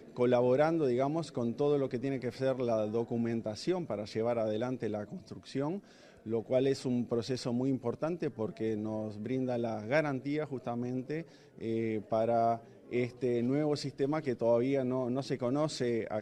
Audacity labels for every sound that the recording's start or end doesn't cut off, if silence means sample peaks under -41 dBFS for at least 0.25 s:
6.260000	11.220000	sound
11.590000	12.570000	sound